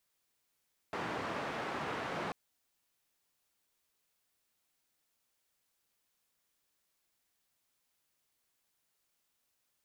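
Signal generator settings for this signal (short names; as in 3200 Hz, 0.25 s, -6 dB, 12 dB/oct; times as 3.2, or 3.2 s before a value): noise band 130–1300 Hz, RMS -38.5 dBFS 1.39 s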